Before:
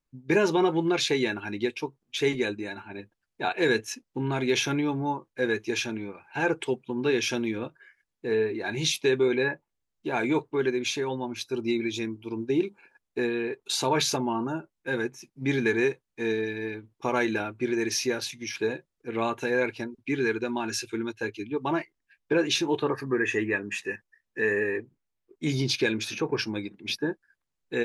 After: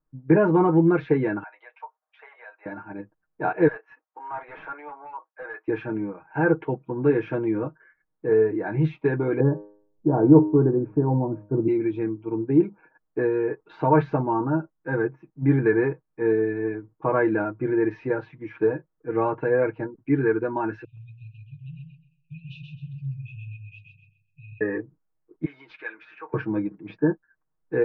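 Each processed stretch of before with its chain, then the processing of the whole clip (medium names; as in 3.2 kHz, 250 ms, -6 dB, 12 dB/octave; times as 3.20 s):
1.43–2.66 s: steep high-pass 620 Hz 48 dB/octave + compression 4:1, threshold -39 dBFS
3.68–5.68 s: high-pass 700 Hz 24 dB/octave + treble shelf 3.4 kHz -9 dB + overload inside the chain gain 33 dB
9.40–11.68 s: low-pass 1.2 kHz 24 dB/octave + tilt shelf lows +8 dB, about 790 Hz + de-hum 103 Hz, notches 37
20.84–24.61 s: brick-wall FIR band-stop 150–2400 Hz + feedback delay 129 ms, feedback 27%, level -4 dB
25.45–26.34 s: high-pass 1.5 kHz + short-mantissa float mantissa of 4-bit
whole clip: low-pass 1.5 kHz 24 dB/octave; dynamic bell 160 Hz, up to +4 dB, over -39 dBFS, Q 0.99; comb 6.4 ms, depth 79%; trim +2.5 dB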